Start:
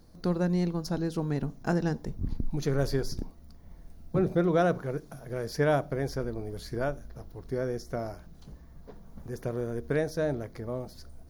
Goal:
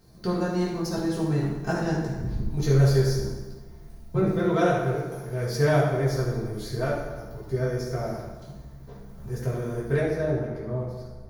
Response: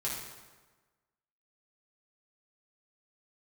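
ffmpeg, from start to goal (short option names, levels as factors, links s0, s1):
-filter_complex "[0:a]asetnsamples=n=441:p=0,asendcmd='10 highshelf g -10.5',highshelf=f=2600:g=3.5[s0];[1:a]atrim=start_sample=2205[s1];[s0][s1]afir=irnorm=-1:irlink=0"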